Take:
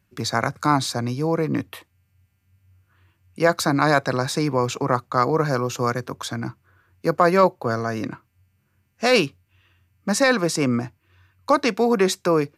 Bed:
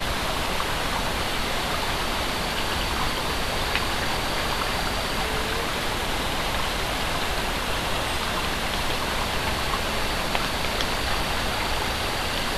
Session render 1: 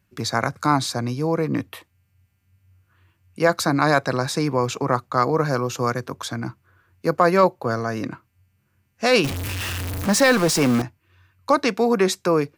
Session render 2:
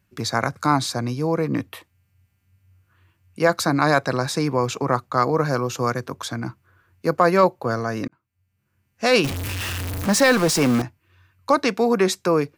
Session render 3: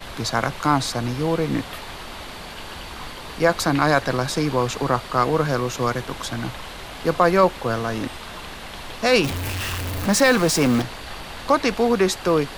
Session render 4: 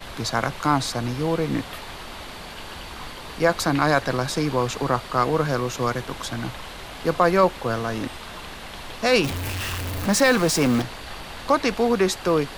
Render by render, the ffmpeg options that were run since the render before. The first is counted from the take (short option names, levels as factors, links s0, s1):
-filter_complex "[0:a]asettb=1/sr,asplit=3[s0][s1][s2];[s0]atrim=end=9.244[s3];[s1]atrim=start=9.24:end=10.82,asetpts=PTS-STARTPTS,afade=t=in:d=0.004:c=qsin,afade=t=out:st=1.576:d=0.004:c=qsin,aeval=exprs='val(0)+0.5*0.0841*sgn(val(0))':c=same[s4];[s2]atrim=start=10.816[s5];[s3][s4]acrossfade=d=0.004:c1=hsin:c2=qsin[s6];[s6][s5]acrossfade=d=0.004:c1=qsin:c2=hsin"
-filter_complex "[0:a]asplit=2[s0][s1];[s0]atrim=end=8.08,asetpts=PTS-STARTPTS,afade=t=out:st=8.076:d=0.004:c=hsin[s2];[s1]atrim=start=8.08,asetpts=PTS-STARTPTS,afade=t=in:d=1[s3];[s2][s3]concat=n=2:v=0:a=1"
-filter_complex "[1:a]volume=0.335[s0];[0:a][s0]amix=inputs=2:normalize=0"
-af "volume=0.841"